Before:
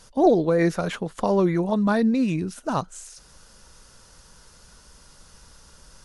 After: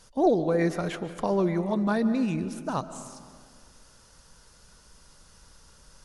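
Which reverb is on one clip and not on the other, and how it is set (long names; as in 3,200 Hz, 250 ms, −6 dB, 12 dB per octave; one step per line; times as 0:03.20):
comb and all-pass reverb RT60 1.9 s, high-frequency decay 0.4×, pre-delay 100 ms, DRR 12 dB
level −4.5 dB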